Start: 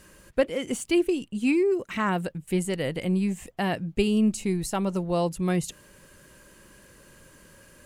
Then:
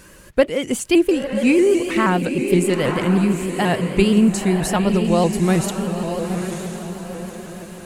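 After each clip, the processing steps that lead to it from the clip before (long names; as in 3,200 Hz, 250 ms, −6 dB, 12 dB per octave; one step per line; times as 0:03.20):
feedback delay with all-pass diffusion 950 ms, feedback 42%, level −6 dB
pitch modulation by a square or saw wave saw up 6.3 Hz, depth 100 cents
level +7.5 dB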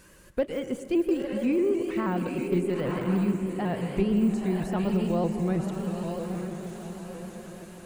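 de-essing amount 95%
convolution reverb RT60 1.4 s, pre-delay 102 ms, DRR 10.5 dB
level −9 dB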